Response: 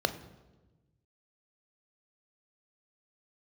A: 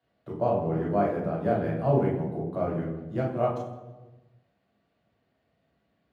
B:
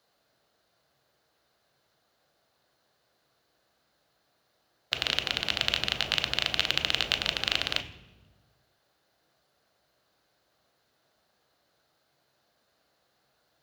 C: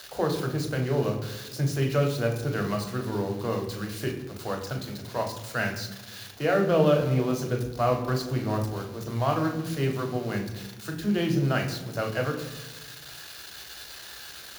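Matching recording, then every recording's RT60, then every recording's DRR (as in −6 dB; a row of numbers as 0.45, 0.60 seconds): B; 1.2, 1.2, 1.2 seconds; −4.0, 9.5, 2.0 decibels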